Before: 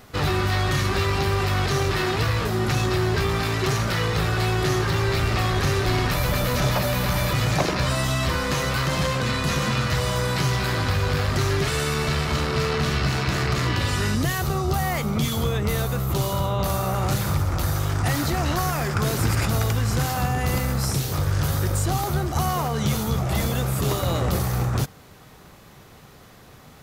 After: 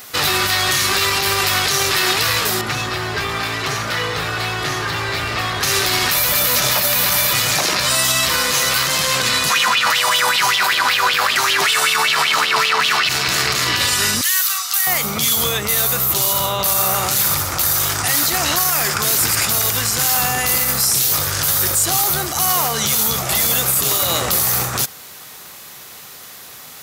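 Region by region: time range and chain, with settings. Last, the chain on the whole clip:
2.61–5.63 s: low-pass 1.7 kHz 6 dB/octave + comb of notches 190 Hz
9.50–13.09 s: high-pass 180 Hz + sweeping bell 5.2 Hz 840–3300 Hz +18 dB
14.21–14.87 s: high-pass 1.3 kHz 24 dB/octave + comb 5.2 ms, depth 33%
whole clip: tilt EQ +4 dB/octave; peak limiter -13.5 dBFS; trim +7 dB

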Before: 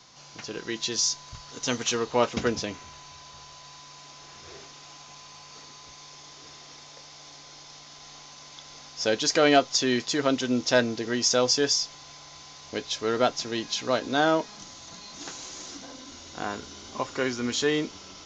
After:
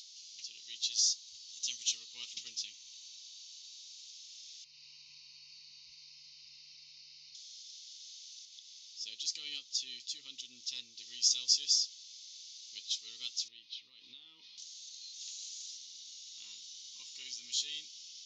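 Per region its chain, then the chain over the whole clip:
4.64–7.35 s: low-pass 4 kHz 24 dB/octave + resonant low shelf 270 Hz +10 dB, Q 1.5 + static phaser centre 2.3 kHz, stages 8
8.45–10.99 s: high-pass 60 Hz + treble shelf 2.2 kHz -7.5 dB
13.48–14.58 s: Gaussian low-pass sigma 2.7 samples + compression 12:1, threshold -30 dBFS
whole clip: inverse Chebyshev high-pass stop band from 1.7 kHz, stop band 40 dB; treble shelf 6.2 kHz -8.5 dB; upward compressor, threshold -46 dBFS

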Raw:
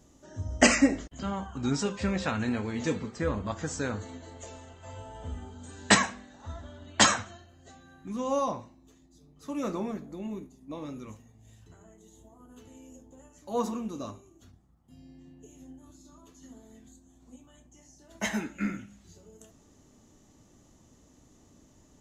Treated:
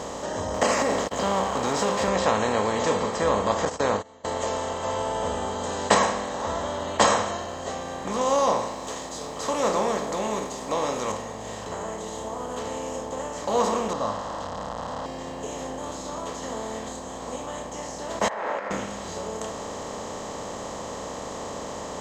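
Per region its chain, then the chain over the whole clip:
0.54–2.08 s: companding laws mixed up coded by mu + high-pass 110 Hz + compression 4:1, threshold -25 dBFS
3.65–4.25 s: gate -35 dBFS, range -54 dB + distance through air 60 m
8.21–11.12 s: tone controls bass -5 dB, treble +7 dB + tape noise reduction on one side only encoder only
13.93–15.06 s: one-bit delta coder 64 kbps, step -44.5 dBFS + distance through air 260 m + static phaser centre 960 Hz, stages 4
18.28–18.71 s: companding laws mixed up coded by mu + Chebyshev band-pass 550–1900 Hz, order 3 + compressor with a negative ratio -51 dBFS
whole clip: spectral levelling over time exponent 0.4; high-order bell 670 Hz +10 dB; trim -6 dB

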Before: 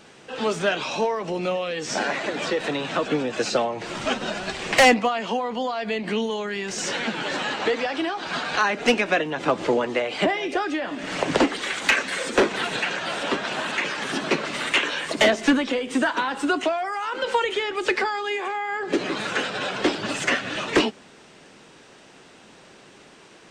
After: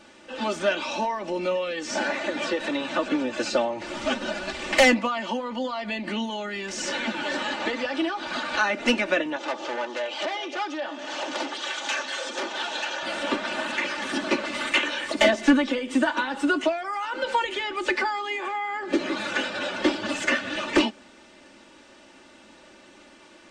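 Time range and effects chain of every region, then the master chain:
9.36–13.03 s: hard clipper -20.5 dBFS + cabinet simulation 420–7600 Hz, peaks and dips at 810 Hz +5 dB, 2.1 kHz -7 dB, 3.3 kHz +4 dB, 6.1 kHz +4 dB + transformer saturation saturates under 2 kHz
whole clip: treble shelf 10 kHz -6.5 dB; comb 3.4 ms, depth 78%; trim -3.5 dB

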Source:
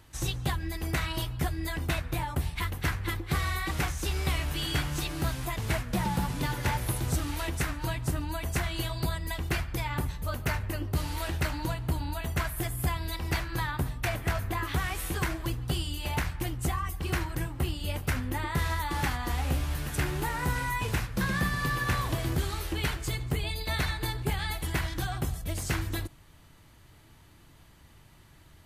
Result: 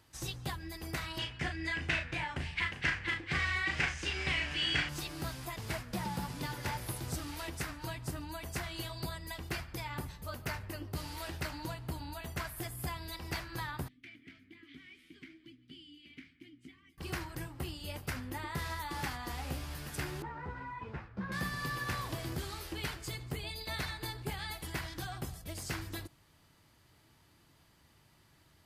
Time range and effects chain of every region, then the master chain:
1.18–4.89 s: low-pass 7.7 kHz 24 dB/octave + high-order bell 2.2 kHz +10 dB 1.2 oct + doubling 37 ms -6 dB
13.88–16.98 s: vowel filter i + peaking EQ 560 Hz -10 dB 0.37 oct
20.22–21.32 s: low-pass 1.6 kHz + three-phase chorus
whole clip: high-pass 110 Hz 6 dB/octave; peaking EQ 4.9 kHz +6 dB 0.26 oct; trim -7 dB

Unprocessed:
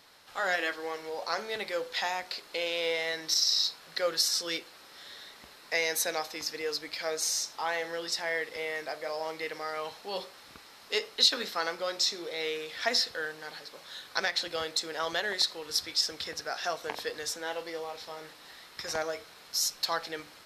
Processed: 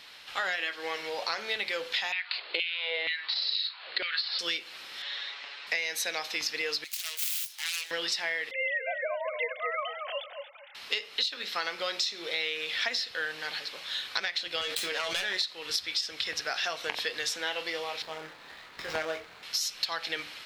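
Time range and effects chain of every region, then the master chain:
2.12–4.39 s: steep low-pass 4.7 kHz 96 dB/octave + LFO high-pass saw down 2.1 Hz 280–2700 Hz
5.02–5.67 s: band-pass 550–5200 Hz + distance through air 50 m + comb 7.1 ms, depth 88%
6.84–7.91 s: self-modulated delay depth 0.65 ms + differentiator
8.51–10.75 s: formants replaced by sine waves + filtered feedback delay 230 ms, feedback 24%, low-pass 1.5 kHz, level -5 dB
14.61–15.37 s: self-modulated delay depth 0.22 ms + feedback comb 93 Hz, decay 0.15 s, mix 90% + level flattener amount 70%
18.02–19.43 s: median filter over 15 samples + doubling 25 ms -5.5 dB
whole clip: peaking EQ 2.8 kHz +14 dB 1.6 oct; compression 16:1, threshold -27 dBFS

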